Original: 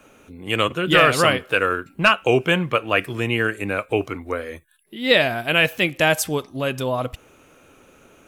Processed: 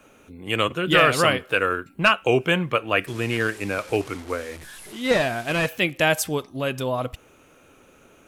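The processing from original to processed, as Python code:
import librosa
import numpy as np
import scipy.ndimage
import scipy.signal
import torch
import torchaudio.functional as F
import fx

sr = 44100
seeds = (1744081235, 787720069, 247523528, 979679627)

y = fx.delta_mod(x, sr, bps=64000, step_db=-33.0, at=(3.07, 5.69))
y = F.gain(torch.from_numpy(y), -2.0).numpy()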